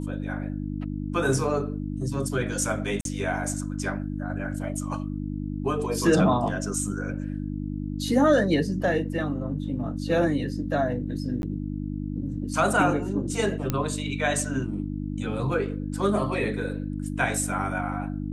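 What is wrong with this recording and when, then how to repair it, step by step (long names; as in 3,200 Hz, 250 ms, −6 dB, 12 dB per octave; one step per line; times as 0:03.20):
mains hum 50 Hz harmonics 6 −31 dBFS
0:03.01–0:03.05: drop-out 42 ms
0:11.42–0:11.43: drop-out 11 ms
0:13.70: click −11 dBFS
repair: click removal
hum removal 50 Hz, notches 6
repair the gap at 0:03.01, 42 ms
repair the gap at 0:11.42, 11 ms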